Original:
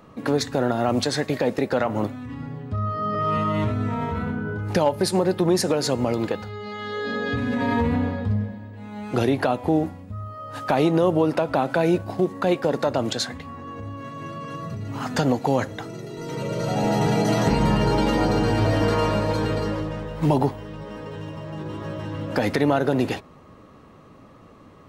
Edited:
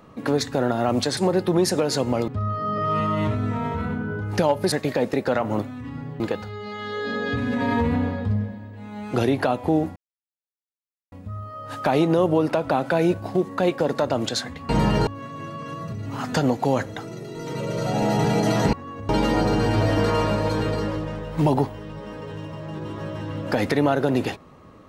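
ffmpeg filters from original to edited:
ffmpeg -i in.wav -filter_complex "[0:a]asplit=10[link_01][link_02][link_03][link_04][link_05][link_06][link_07][link_08][link_09][link_10];[link_01]atrim=end=1.172[link_11];[link_02]atrim=start=5.088:end=6.202[link_12];[link_03]atrim=start=2.648:end=5.092[link_13];[link_04]atrim=start=1.168:end=2.652[link_14];[link_05]atrim=start=6.198:end=9.96,asetpts=PTS-STARTPTS,afade=type=out:start_time=3.758:duration=0.004:curve=hsin,apad=pad_dur=1.16[link_15];[link_06]atrim=start=9.96:end=13.532,asetpts=PTS-STARTPTS,afade=type=in:duration=0.004:curve=hsin[link_16];[link_07]atrim=start=17.548:end=17.932[link_17];[link_08]atrim=start=13.888:end=17.552[link_18];[link_09]atrim=start=13.528:end=13.892[link_19];[link_10]atrim=start=17.928[link_20];[link_11][link_12]acrossfade=duration=0.004:curve1=hsin:curve2=hsin[link_21];[link_21][link_13]acrossfade=duration=0.004:curve1=hsin:curve2=hsin[link_22];[link_22][link_14]acrossfade=duration=0.004:curve1=hsin:curve2=hsin[link_23];[link_15][link_16]concat=n=2:v=0:a=1[link_24];[link_23][link_24]acrossfade=duration=0.004:curve1=hsin:curve2=hsin[link_25];[link_25][link_17]acrossfade=duration=0.004:curve1=hsin:curve2=hsin[link_26];[link_26][link_18]acrossfade=duration=0.004:curve1=hsin:curve2=hsin[link_27];[link_27][link_19]acrossfade=duration=0.004:curve1=hsin:curve2=hsin[link_28];[link_28][link_20]acrossfade=duration=0.004:curve1=hsin:curve2=hsin" out.wav

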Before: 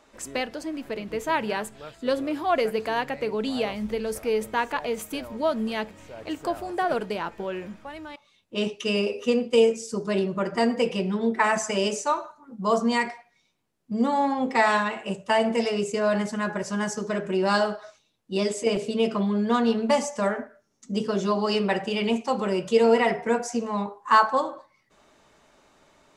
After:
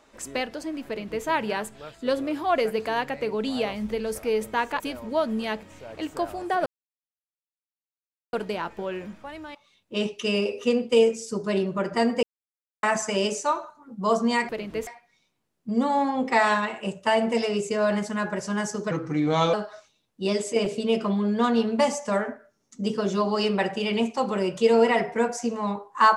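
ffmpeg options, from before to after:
ffmpeg -i in.wav -filter_complex "[0:a]asplit=9[link_01][link_02][link_03][link_04][link_05][link_06][link_07][link_08][link_09];[link_01]atrim=end=4.802[link_10];[link_02]atrim=start=5.078:end=6.94,asetpts=PTS-STARTPTS,afade=type=out:start_time=1.858:duration=0.004:curve=hsin,apad=pad_dur=1.67[link_11];[link_03]atrim=start=6.94:end=10.84,asetpts=PTS-STARTPTS,afade=type=in:duration=0.004:curve=hsin,afade=type=out:start_time=3.896:duration=0.004:curve=hsin[link_12];[link_04]atrim=start=10.84:end=11.44,asetpts=PTS-STARTPTS,volume=0[link_13];[link_05]atrim=start=11.44:end=13.102,asetpts=PTS-STARTPTS,afade=type=in:duration=0.004:curve=hsin[link_14];[link_06]atrim=start=0.868:end=1.252[link_15];[link_07]atrim=start=13.098:end=17.144[link_16];[link_08]atrim=start=17.14:end=17.64,asetpts=PTS-STARTPTS,asetrate=35280,aresample=44100,atrim=end_sample=27562,asetpts=PTS-STARTPTS[link_17];[link_09]atrim=start=17.636[link_18];[link_11][link_12][link_13][link_14]concat=n=4:v=0:a=1[link_19];[link_10][link_19]acrossfade=duration=0.004:curve1=hsin:curve2=hsin[link_20];[link_20][link_15]acrossfade=duration=0.004:curve1=hsin:curve2=hsin[link_21];[link_21][link_16]acrossfade=duration=0.004:curve1=hsin:curve2=hsin[link_22];[link_22][link_17]acrossfade=duration=0.004:curve1=hsin:curve2=hsin[link_23];[link_23][link_18]acrossfade=duration=0.004:curve1=hsin:curve2=hsin" out.wav

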